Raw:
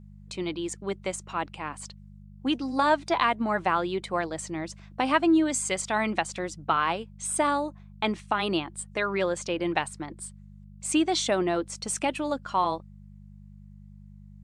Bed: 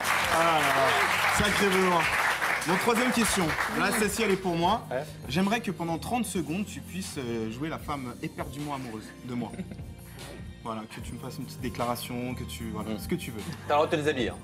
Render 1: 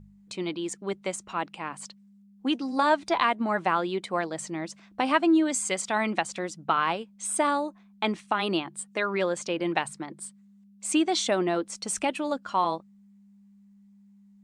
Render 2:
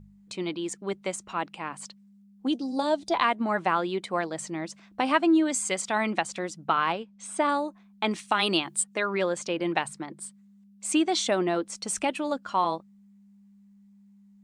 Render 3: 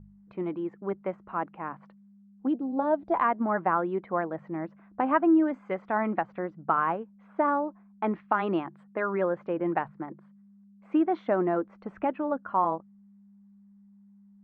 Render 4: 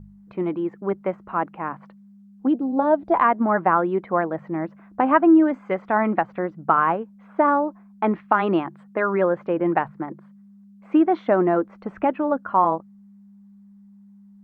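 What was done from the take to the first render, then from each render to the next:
de-hum 50 Hz, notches 3
2.47–3.14 band shelf 1600 Hz -12.5 dB; 6.92–7.49 air absorption 74 m; 8.11–8.84 high shelf 2600 Hz +11 dB
LPF 1600 Hz 24 dB/oct
gain +7 dB

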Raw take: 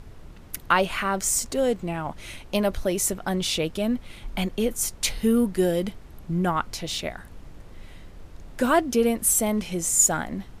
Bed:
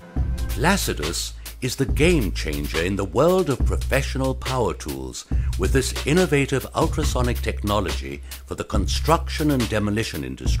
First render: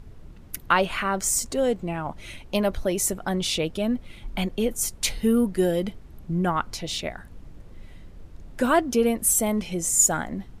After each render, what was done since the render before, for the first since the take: denoiser 6 dB, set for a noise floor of -46 dBFS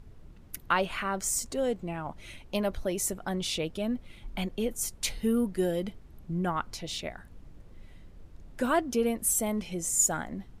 gain -6 dB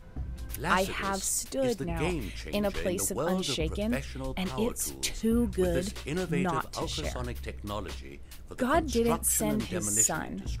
add bed -14 dB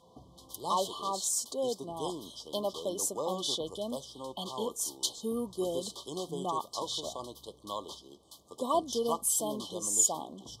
FFT band-reject 1200–3000 Hz; weighting filter A

